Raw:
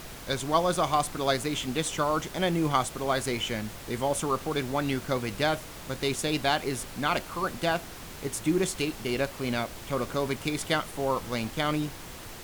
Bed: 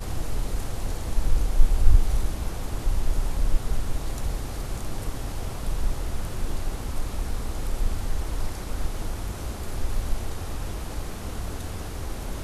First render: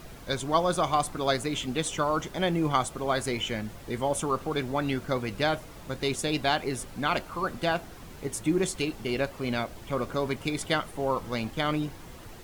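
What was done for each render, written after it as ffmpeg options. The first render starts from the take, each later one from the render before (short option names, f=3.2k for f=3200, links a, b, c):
-af "afftdn=nr=8:nf=-43"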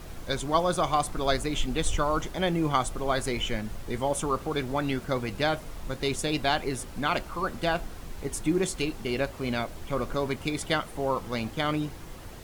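-filter_complex "[1:a]volume=-14.5dB[a];[0:a][a]amix=inputs=2:normalize=0"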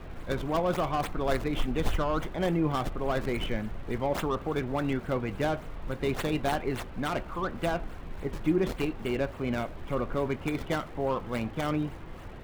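-filter_complex "[0:a]acrossover=split=620|3200[a][b][c];[b]asoftclip=type=tanh:threshold=-30dB[d];[c]acrusher=samples=36:mix=1:aa=0.000001:lfo=1:lforange=57.6:lforate=3.5[e];[a][d][e]amix=inputs=3:normalize=0"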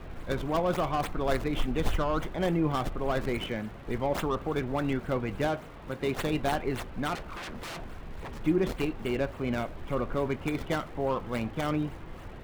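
-filter_complex "[0:a]asettb=1/sr,asplit=3[a][b][c];[a]atrim=end=3.384[d];[b]atrim=start=3.38:end=3.87,asetpts=PTS-STARTPTS,afade=t=in:d=0.004:c=qsin,afade=t=out:st=0.486:d=0.004:c=qsin,highpass=f=110:p=1[e];[c]atrim=start=3.866[f];[d][e]acrossfade=d=0.004:c1=hsin:c2=qsin[g];[g][f]acrossfade=d=0.004:c1=qsin:c2=hsin,asettb=1/sr,asplit=3[h][i][j];[h]atrim=end=5.474[k];[i]atrim=start=5.47:end=6.17,asetpts=PTS-STARTPTS,afade=t=in:d=0.004:c=qsin,afade=t=out:st=0.696:d=0.004:c=qsin,highpass=f=120:p=1[l];[j]atrim=start=6.166[m];[k][l]acrossfade=d=0.004:c1=hsin:c2=qsin[n];[n][m]acrossfade=d=0.004:c1=qsin:c2=hsin,asettb=1/sr,asplit=3[o][p][q];[o]atrim=end=7.154[r];[p]atrim=start=7.15:end=8.42,asetpts=PTS-STARTPTS,afade=t=in:d=0.004:c=qsin,afade=t=out:st=1.266:d=0.004:c=qsin,aeval=exprs='0.02*(abs(mod(val(0)/0.02+3,4)-2)-1)':c=same[s];[q]atrim=start=8.416[t];[r][s]acrossfade=d=0.004:c1=hsin:c2=qsin[u];[u][t]acrossfade=d=0.004:c1=qsin:c2=hsin"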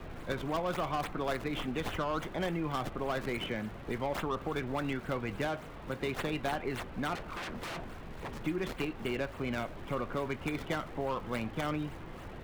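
-filter_complex "[0:a]acrossover=split=96|1000|3400[a][b][c][d];[a]acompressor=threshold=-46dB:ratio=4[e];[b]acompressor=threshold=-33dB:ratio=4[f];[c]acompressor=threshold=-36dB:ratio=4[g];[d]acompressor=threshold=-49dB:ratio=4[h];[e][f][g][h]amix=inputs=4:normalize=0"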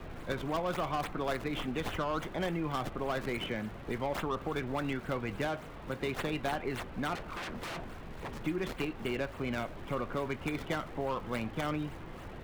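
-af anull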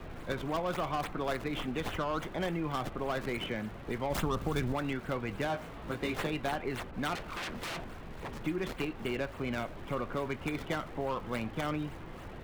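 -filter_complex "[0:a]asettb=1/sr,asplit=3[a][b][c];[a]atrim=end=4.104[d];[b]atrim=start=4.1:end=4.73,asetpts=PTS-STARTPTS,afade=t=in:d=0.004:c=qsin,afade=t=out:st=0.626:d=0.004:c=qsin,bass=f=250:g=8,treble=f=4k:g=9[e];[c]atrim=start=4.726[f];[d][e]acrossfade=d=0.004:c1=hsin:c2=qsin[g];[g][f]acrossfade=d=0.004:c1=qsin:c2=hsin,asettb=1/sr,asplit=3[h][i][j];[h]atrim=end=5.484[k];[i]atrim=start=5.48:end=6.27,asetpts=PTS-STARTPTS,afade=t=in:d=0.004:c=qsin,afade=t=out:st=0.786:d=0.004:c=qsin,asplit=2[l][m];[m]adelay=18,volume=-3.5dB[n];[l][n]amix=inputs=2:normalize=0,atrim=end_sample=34839[o];[j]atrim=start=6.266[p];[k][o]acrossfade=d=0.004:c1=hsin:c2=qsin[q];[q][p]acrossfade=d=0.004:c1=qsin:c2=hsin,asettb=1/sr,asplit=3[r][s][t];[r]atrim=end=6.914[u];[s]atrim=start=6.91:end=7.84,asetpts=PTS-STARTPTS,afade=t=in:d=0.004:c=qsin,afade=t=out:st=0.926:d=0.004:c=qsin,adynamicequalizer=threshold=0.00355:dfrequency=1900:dqfactor=0.7:tfrequency=1900:tqfactor=0.7:attack=5:release=100:ratio=0.375:range=2:mode=boostabove:tftype=highshelf[v];[t]atrim=start=7.836[w];[u][v]acrossfade=d=0.004:c1=hsin:c2=qsin[x];[x][w]acrossfade=d=0.004:c1=qsin:c2=hsin"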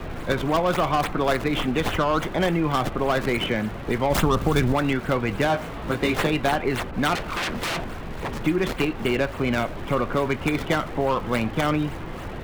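-af "volume=11.5dB"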